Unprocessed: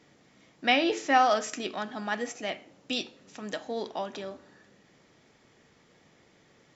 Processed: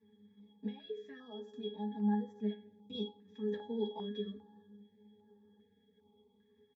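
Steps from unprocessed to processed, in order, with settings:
notch filter 570 Hz, Q 12
comb filter 4.5 ms, depth 98%
0:00.66–0:02.95: downward compressor 6 to 1, threshold −34 dBFS, peak gain reduction 17.5 dB
leveller curve on the samples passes 1
flanger 0.87 Hz, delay 6.8 ms, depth 9.6 ms, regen −71%
resonances in every octave G#, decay 0.28 s
flanger 0.39 Hz, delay 9.2 ms, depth 3.4 ms, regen +32%
notch on a step sequencer 2.5 Hz 710–2,500 Hz
level +13.5 dB

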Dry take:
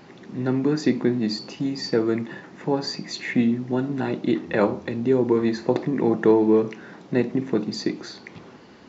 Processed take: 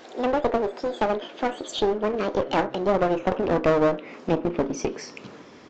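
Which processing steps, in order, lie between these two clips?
gliding playback speed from 198% → 114%
treble cut that deepens with the level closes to 2,000 Hz, closed at −18.5 dBFS
asymmetric clip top −27 dBFS
downsampling to 16,000 Hz
level +1 dB

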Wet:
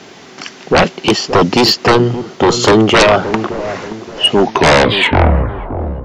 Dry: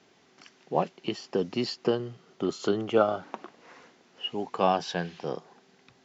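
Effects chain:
turntable brake at the end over 1.71 s
sine wavefolder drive 16 dB, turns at −9 dBFS
delay with a low-pass on its return 574 ms, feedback 35%, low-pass 760 Hz, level −10 dB
level +5 dB

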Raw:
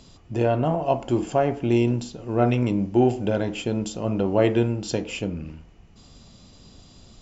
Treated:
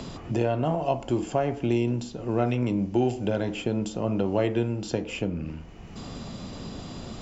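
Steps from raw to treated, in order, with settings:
multiband upward and downward compressor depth 70%
level −3.5 dB

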